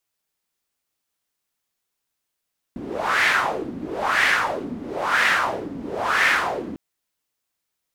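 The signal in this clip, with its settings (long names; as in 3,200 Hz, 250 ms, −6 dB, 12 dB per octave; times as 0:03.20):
wind from filtered noise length 4.00 s, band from 250 Hz, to 1,900 Hz, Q 3.4, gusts 4, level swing 15 dB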